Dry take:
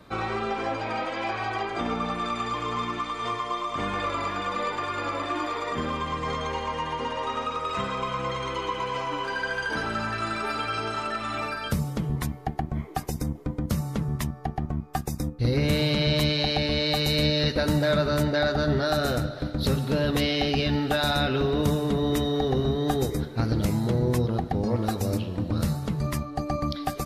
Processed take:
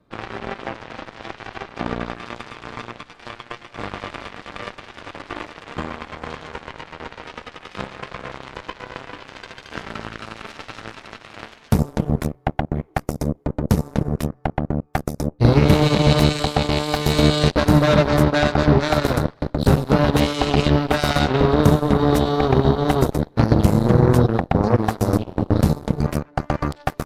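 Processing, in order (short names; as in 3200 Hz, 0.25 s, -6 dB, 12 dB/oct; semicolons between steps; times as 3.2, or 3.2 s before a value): tilt shelf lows +4.5 dB; added harmonics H 6 -28 dB, 7 -16 dB, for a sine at -8.5 dBFS; gain +6 dB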